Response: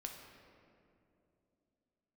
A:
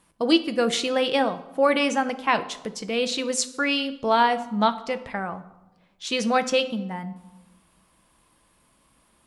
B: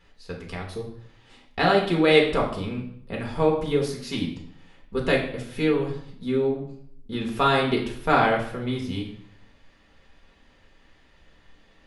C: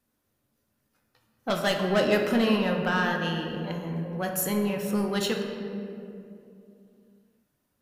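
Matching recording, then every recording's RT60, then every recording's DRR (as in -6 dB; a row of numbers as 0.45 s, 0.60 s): C; 1.0 s, 0.65 s, 2.7 s; 9.5 dB, -1.5 dB, 1.5 dB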